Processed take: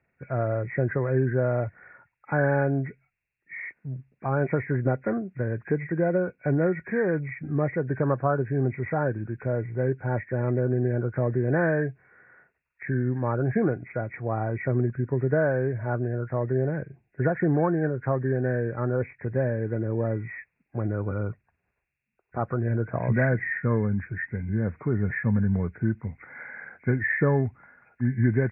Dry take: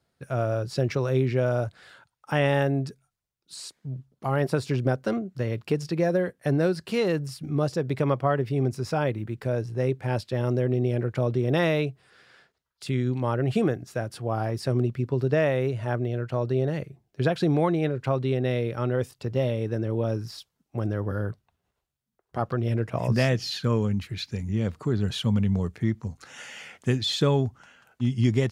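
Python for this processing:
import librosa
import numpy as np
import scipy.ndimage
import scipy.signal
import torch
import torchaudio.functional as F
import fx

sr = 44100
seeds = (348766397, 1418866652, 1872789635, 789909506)

y = fx.freq_compress(x, sr, knee_hz=1400.0, ratio=4.0)
y = fx.air_absorb(y, sr, metres=170.0)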